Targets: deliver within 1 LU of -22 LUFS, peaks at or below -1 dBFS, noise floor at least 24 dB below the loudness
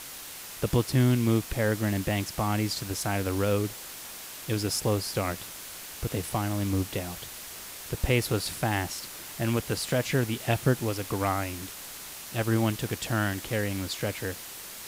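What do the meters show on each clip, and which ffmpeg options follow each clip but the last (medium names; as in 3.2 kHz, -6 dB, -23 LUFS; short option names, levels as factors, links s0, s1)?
noise floor -42 dBFS; noise floor target -54 dBFS; loudness -29.5 LUFS; peak level -10.5 dBFS; loudness target -22.0 LUFS
-> -af "afftdn=nr=12:nf=-42"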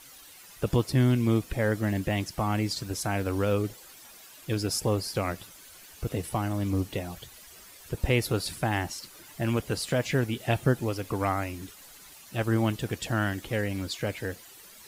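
noise floor -50 dBFS; noise floor target -53 dBFS
-> -af "afftdn=nr=6:nf=-50"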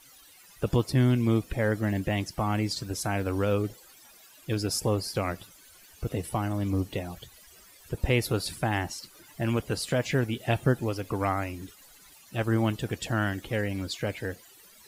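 noise floor -54 dBFS; loudness -29.0 LUFS; peak level -10.5 dBFS; loudness target -22.0 LUFS
-> -af "volume=2.24"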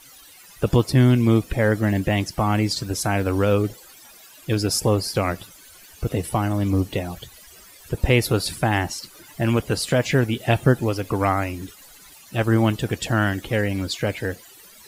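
loudness -22.0 LUFS; peak level -3.5 dBFS; noise floor -47 dBFS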